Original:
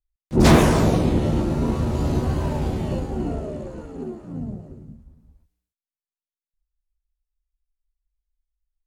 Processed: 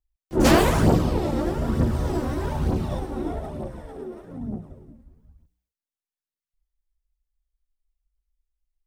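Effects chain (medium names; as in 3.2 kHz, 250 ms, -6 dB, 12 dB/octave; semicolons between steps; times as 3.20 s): phaser 1.1 Hz, delay 3.9 ms, feedback 54%; formant shift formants +4 st; trim -4 dB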